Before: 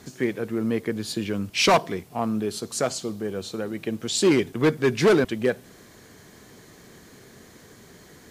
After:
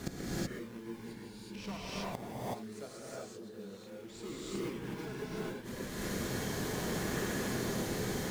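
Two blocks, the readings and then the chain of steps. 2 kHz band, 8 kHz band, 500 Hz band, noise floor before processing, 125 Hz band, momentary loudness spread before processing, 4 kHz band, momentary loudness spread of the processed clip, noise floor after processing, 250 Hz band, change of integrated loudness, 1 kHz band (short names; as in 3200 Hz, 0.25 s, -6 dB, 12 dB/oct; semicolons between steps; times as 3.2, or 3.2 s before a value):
-12.0 dB, -10.5 dB, -16.0 dB, -50 dBFS, -8.5 dB, 11 LU, -13.5 dB, 12 LU, -50 dBFS, -12.5 dB, -15.0 dB, -14.0 dB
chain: in parallel at -3 dB: decimation with a swept rate 40×, swing 160% 0.25 Hz; on the sum: flipped gate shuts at -24 dBFS, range -31 dB; non-linear reverb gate 0.4 s rising, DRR -8 dB; gain +1 dB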